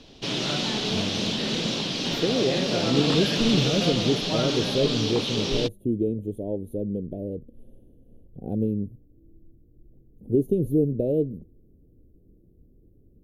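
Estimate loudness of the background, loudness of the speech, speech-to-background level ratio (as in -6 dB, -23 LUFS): -25.5 LUFS, -27.0 LUFS, -1.5 dB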